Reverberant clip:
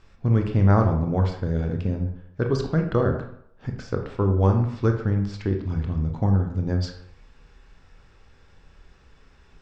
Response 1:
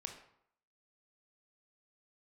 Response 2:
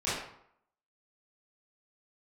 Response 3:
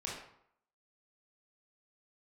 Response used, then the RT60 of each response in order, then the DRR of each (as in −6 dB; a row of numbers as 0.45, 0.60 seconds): 1; 0.70, 0.70, 0.70 seconds; 3.5, −12.5, −5.0 decibels